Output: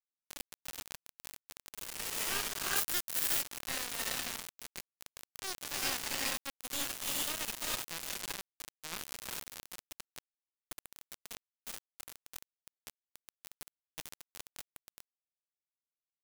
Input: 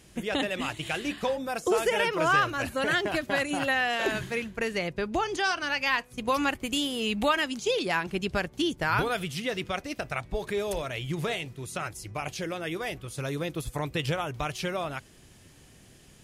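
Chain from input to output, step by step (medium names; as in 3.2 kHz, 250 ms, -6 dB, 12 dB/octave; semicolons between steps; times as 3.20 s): pre-emphasis filter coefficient 0.97; feedback echo behind a high-pass 69 ms, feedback 58%, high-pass 4.5 kHz, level -4 dB; half-wave rectifier; gated-style reverb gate 450 ms rising, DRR -6.5 dB; bit crusher 5-bit; 2.76–3.42 s: treble shelf 9.3 kHz +12 dB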